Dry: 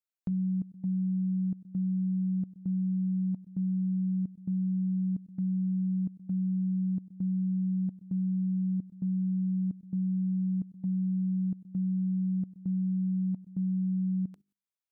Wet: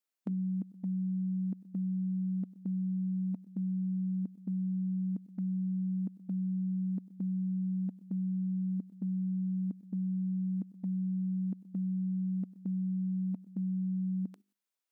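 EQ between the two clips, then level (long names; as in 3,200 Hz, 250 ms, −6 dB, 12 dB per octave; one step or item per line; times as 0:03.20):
linear-phase brick-wall high-pass 190 Hz
+3.5 dB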